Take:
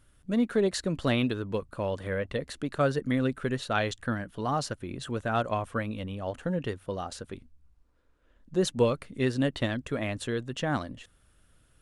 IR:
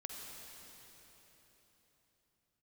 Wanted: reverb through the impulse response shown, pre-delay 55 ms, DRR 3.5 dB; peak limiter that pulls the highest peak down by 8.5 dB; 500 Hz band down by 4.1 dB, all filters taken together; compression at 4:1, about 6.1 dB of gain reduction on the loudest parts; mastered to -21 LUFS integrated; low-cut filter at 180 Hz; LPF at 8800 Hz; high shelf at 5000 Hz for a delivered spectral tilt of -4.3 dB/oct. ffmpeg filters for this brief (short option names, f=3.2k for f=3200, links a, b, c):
-filter_complex "[0:a]highpass=180,lowpass=8.8k,equalizer=f=500:t=o:g=-5,highshelf=f=5k:g=5,acompressor=threshold=-30dB:ratio=4,alimiter=level_in=3dB:limit=-24dB:level=0:latency=1,volume=-3dB,asplit=2[a][b];[1:a]atrim=start_sample=2205,adelay=55[c];[b][c]afir=irnorm=-1:irlink=0,volume=-1.5dB[d];[a][d]amix=inputs=2:normalize=0,volume=16.5dB"